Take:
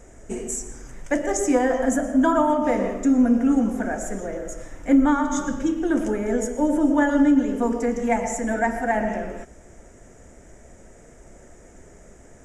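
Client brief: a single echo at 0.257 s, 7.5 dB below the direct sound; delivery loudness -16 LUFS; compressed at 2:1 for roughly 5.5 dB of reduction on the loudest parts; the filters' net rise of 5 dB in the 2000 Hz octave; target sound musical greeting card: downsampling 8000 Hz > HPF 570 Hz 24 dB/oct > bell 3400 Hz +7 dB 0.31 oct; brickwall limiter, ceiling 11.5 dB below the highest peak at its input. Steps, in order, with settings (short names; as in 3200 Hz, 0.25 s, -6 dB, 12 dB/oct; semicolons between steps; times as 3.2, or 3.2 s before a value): bell 2000 Hz +6 dB; compressor 2:1, threshold -23 dBFS; limiter -23 dBFS; echo 0.257 s -7.5 dB; downsampling 8000 Hz; HPF 570 Hz 24 dB/oct; bell 3400 Hz +7 dB 0.31 oct; gain +20 dB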